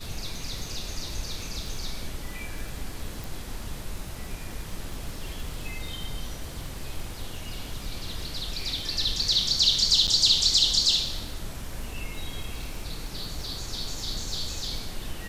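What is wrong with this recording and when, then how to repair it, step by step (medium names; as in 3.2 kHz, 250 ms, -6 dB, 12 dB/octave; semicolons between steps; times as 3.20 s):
crackle 29 per s -34 dBFS
3.24 s: pop
10.07–10.08 s: dropout 8.1 ms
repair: de-click; interpolate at 10.07 s, 8.1 ms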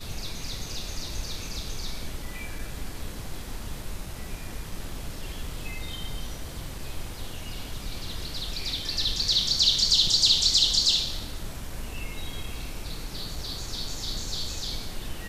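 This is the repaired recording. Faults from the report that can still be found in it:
nothing left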